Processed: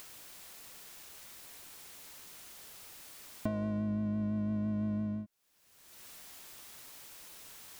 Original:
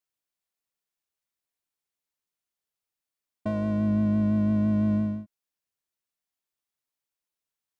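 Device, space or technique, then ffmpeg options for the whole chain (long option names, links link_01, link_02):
upward and downward compression: -af "acompressor=mode=upward:threshold=-33dB:ratio=2.5,acompressor=threshold=-39dB:ratio=6,volume=6.5dB"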